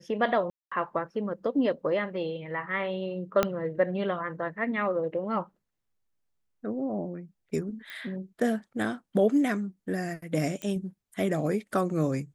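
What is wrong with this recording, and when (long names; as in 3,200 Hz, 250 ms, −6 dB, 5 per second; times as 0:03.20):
0:00.50–0:00.71: drop-out 215 ms
0:03.43: click −9 dBFS
0:07.90: click −25 dBFS
0:10.62: click −21 dBFS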